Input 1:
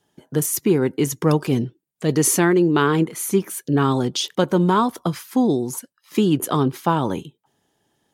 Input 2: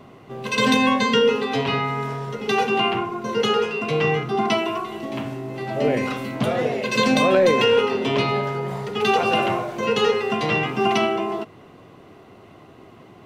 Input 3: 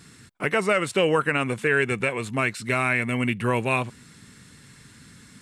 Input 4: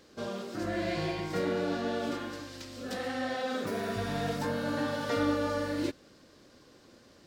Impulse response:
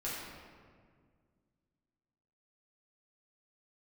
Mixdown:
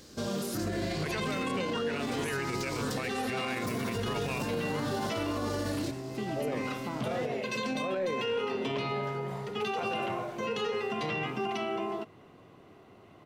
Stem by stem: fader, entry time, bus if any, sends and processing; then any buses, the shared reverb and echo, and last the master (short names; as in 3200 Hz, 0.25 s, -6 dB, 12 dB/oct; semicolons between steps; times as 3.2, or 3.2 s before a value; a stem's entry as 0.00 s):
-20.0 dB, 0.00 s, no send, dry
-8.5 dB, 0.60 s, no send, dry
-7.0 dB, 0.60 s, no send, vibrato 6.6 Hz 48 cents
+2.5 dB, 0.00 s, no send, tone controls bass +8 dB, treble +10 dB; limiter -24.5 dBFS, peak gain reduction 8.5 dB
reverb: off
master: limiter -24 dBFS, peak gain reduction 12 dB